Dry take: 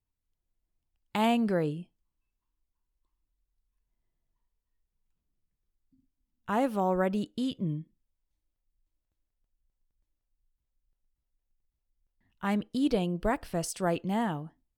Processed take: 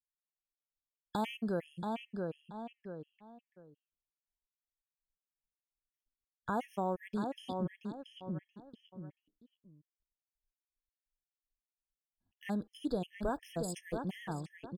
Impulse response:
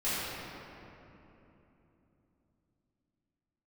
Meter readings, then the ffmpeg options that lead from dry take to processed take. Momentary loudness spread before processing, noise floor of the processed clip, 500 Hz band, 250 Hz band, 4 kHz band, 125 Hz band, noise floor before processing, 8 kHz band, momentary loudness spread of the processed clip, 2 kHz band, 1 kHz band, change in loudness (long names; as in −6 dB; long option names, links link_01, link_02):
9 LU, below −85 dBFS, −7.5 dB, −8.0 dB, −8.0 dB, −7.0 dB, −85 dBFS, can't be measured, 14 LU, −8.0 dB, −7.0 dB, −9.5 dB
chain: -filter_complex "[0:a]agate=range=-33dB:threshold=-59dB:ratio=3:detection=peak,asplit=2[link_01][link_02];[link_02]adelay=679,lowpass=frequency=3300:poles=1,volume=-6.5dB,asplit=2[link_03][link_04];[link_04]adelay=679,lowpass=frequency=3300:poles=1,volume=0.19,asplit=2[link_05][link_06];[link_06]adelay=679,lowpass=frequency=3300:poles=1,volume=0.19[link_07];[link_01][link_03][link_05][link_07]amix=inputs=4:normalize=0,acompressor=threshold=-47dB:ratio=2,afftfilt=real='re*gt(sin(2*PI*2.8*pts/sr)*(1-2*mod(floor(b*sr/1024/1700),2)),0)':imag='im*gt(sin(2*PI*2.8*pts/sr)*(1-2*mod(floor(b*sr/1024/1700),2)),0)':win_size=1024:overlap=0.75,volume=6dB"